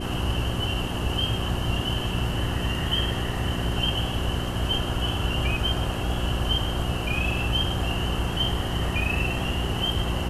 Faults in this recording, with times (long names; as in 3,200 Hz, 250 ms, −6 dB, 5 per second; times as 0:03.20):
mains hum 60 Hz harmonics 6 −30 dBFS